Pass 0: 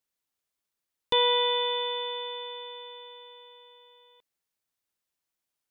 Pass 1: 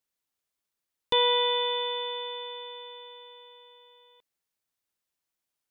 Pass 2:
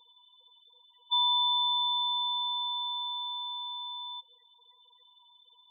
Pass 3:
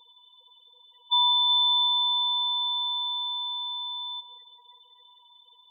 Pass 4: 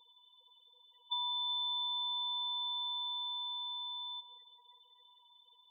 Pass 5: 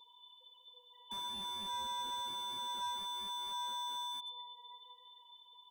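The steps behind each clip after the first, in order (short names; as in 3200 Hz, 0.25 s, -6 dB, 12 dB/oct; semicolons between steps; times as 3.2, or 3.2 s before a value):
nothing audible
per-bin compression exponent 0.4; bell 200 Hz -13.5 dB 2.6 oct; loudest bins only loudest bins 4
echo with dull and thin repeats by turns 0.187 s, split 2100 Hz, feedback 61%, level -9.5 dB; gain +4.5 dB
compressor 4:1, threshold -27 dBFS, peak gain reduction 7.5 dB; gain -8 dB
flange 0.54 Hz, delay 7.1 ms, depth 1.1 ms, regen +34%; reverb RT60 1.8 s, pre-delay 16 ms, DRR 2 dB; slew limiter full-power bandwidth 11 Hz; gain +7.5 dB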